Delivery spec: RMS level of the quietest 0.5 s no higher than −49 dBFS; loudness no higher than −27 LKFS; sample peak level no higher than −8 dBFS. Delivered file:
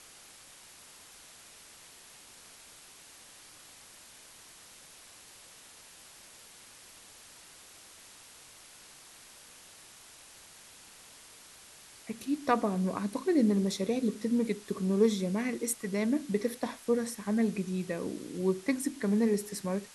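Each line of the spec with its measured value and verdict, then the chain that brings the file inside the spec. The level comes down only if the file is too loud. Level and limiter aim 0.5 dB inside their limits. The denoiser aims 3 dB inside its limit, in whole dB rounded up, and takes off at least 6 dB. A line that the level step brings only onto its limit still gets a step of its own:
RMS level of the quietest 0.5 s −54 dBFS: in spec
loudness −31.0 LKFS: in spec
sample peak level −13.5 dBFS: in spec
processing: no processing needed

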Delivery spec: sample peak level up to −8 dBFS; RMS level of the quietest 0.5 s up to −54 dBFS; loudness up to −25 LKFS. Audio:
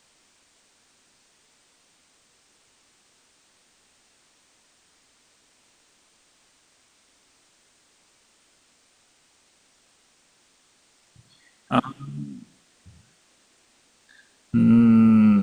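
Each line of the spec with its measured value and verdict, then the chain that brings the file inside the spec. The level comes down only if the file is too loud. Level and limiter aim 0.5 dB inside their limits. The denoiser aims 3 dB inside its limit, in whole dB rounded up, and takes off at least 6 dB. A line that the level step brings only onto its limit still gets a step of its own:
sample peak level −4.5 dBFS: out of spec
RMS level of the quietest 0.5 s −62 dBFS: in spec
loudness −19.5 LKFS: out of spec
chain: level −6 dB

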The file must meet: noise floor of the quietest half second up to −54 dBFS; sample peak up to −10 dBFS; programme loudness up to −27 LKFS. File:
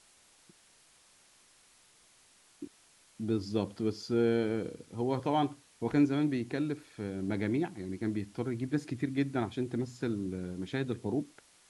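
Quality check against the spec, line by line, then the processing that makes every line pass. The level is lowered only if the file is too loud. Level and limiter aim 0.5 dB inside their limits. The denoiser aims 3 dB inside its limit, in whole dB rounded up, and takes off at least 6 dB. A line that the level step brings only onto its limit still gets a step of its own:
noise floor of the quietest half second −63 dBFS: in spec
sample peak −16.0 dBFS: in spec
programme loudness −33.5 LKFS: in spec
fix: no processing needed

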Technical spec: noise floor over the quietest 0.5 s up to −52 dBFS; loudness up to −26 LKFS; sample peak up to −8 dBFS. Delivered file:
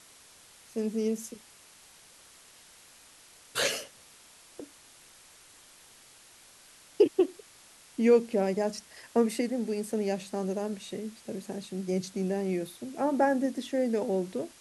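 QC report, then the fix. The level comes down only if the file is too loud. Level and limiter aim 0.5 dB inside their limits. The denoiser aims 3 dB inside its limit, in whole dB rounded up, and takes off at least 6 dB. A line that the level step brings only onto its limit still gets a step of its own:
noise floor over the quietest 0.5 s −56 dBFS: in spec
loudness −30.0 LKFS: in spec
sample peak −11.0 dBFS: in spec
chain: no processing needed

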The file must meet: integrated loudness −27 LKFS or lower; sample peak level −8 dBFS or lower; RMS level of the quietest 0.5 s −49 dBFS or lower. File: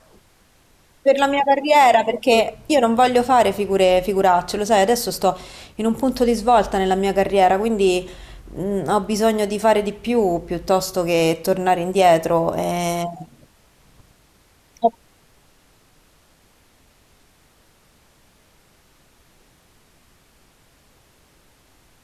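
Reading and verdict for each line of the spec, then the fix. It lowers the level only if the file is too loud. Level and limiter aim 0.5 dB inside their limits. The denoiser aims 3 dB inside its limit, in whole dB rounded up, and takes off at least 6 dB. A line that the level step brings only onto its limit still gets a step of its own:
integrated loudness −18.5 LKFS: out of spec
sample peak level −5.0 dBFS: out of spec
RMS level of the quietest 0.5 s −56 dBFS: in spec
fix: level −9 dB

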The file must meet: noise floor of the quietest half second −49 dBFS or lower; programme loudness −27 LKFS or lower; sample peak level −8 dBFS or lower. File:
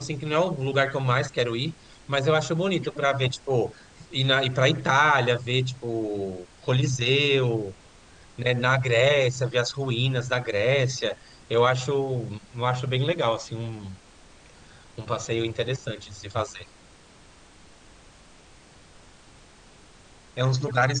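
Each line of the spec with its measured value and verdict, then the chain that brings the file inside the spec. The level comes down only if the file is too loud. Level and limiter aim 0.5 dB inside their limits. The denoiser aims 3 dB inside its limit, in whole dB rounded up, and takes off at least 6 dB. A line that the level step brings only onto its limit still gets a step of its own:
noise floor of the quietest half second −52 dBFS: in spec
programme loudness −24.5 LKFS: out of spec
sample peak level −5.5 dBFS: out of spec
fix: level −3 dB

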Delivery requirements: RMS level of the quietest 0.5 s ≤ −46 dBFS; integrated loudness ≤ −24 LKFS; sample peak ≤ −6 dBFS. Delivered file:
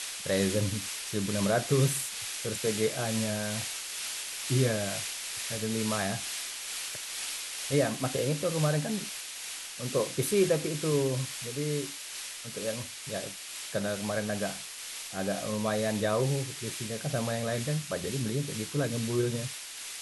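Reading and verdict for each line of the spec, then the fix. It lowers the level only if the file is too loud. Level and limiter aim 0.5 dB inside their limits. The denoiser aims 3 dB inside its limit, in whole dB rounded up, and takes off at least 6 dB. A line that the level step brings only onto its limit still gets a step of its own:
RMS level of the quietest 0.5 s −41 dBFS: out of spec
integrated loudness −31.0 LKFS: in spec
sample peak −13.5 dBFS: in spec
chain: broadband denoise 8 dB, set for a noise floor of −41 dBFS

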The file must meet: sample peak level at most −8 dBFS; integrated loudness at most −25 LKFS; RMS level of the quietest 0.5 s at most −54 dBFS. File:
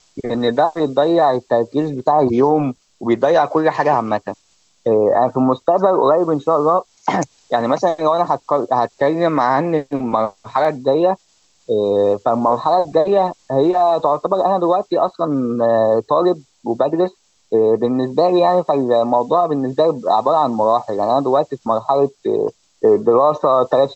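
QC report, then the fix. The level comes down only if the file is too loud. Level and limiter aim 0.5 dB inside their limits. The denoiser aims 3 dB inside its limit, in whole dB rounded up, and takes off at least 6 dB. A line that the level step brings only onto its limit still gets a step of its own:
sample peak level −3.5 dBFS: out of spec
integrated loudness −16.5 LKFS: out of spec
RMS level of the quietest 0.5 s −58 dBFS: in spec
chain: level −9 dB

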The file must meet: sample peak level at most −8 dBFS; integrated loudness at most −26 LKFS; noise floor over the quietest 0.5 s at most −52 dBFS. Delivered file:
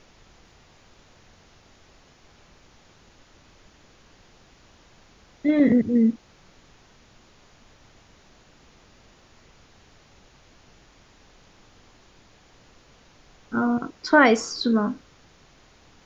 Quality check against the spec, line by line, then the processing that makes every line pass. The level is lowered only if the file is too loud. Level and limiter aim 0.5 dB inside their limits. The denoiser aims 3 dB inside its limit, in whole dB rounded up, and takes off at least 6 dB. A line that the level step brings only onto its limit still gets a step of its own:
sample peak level −4.5 dBFS: out of spec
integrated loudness −21.5 LKFS: out of spec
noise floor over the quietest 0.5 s −55 dBFS: in spec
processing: level −5 dB

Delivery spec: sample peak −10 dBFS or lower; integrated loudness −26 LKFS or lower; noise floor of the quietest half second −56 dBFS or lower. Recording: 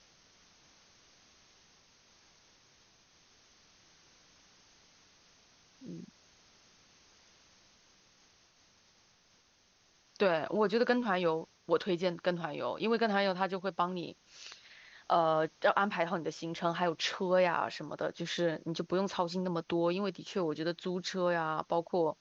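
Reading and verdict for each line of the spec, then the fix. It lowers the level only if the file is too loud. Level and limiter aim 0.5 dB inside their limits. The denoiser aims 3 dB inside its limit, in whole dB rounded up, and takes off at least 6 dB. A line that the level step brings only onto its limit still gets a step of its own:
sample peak −14.5 dBFS: in spec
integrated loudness −32.5 LKFS: in spec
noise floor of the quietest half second −68 dBFS: in spec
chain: no processing needed

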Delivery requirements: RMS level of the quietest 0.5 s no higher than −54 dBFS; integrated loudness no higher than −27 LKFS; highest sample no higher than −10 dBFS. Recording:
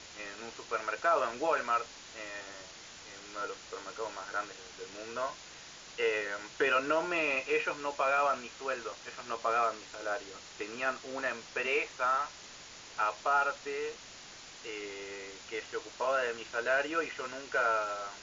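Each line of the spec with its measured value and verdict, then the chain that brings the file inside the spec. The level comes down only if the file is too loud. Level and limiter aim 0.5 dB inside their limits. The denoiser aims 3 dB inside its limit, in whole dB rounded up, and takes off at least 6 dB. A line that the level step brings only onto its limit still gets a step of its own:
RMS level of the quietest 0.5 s −50 dBFS: out of spec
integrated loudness −33.5 LKFS: in spec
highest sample −17.0 dBFS: in spec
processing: broadband denoise 7 dB, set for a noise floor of −50 dBFS

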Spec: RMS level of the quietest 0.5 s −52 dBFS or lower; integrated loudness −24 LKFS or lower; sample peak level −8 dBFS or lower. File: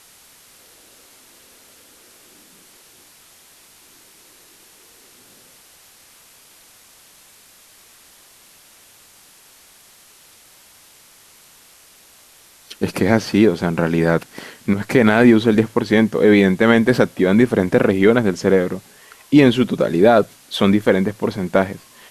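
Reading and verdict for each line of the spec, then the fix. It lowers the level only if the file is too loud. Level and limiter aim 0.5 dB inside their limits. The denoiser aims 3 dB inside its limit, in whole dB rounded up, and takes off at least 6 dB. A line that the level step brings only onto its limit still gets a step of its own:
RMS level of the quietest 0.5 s −49 dBFS: out of spec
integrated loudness −16.0 LKFS: out of spec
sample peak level −2.0 dBFS: out of spec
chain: level −8.5 dB

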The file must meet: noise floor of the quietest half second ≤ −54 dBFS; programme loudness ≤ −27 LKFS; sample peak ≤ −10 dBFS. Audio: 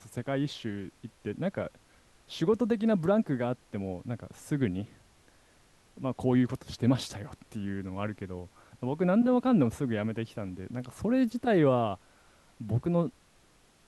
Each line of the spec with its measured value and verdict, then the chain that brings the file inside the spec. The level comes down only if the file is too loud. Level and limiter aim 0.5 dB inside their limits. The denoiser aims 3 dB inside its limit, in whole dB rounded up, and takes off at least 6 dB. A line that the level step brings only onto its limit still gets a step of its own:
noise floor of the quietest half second −62 dBFS: in spec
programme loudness −30.0 LKFS: in spec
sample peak −13.0 dBFS: in spec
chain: no processing needed

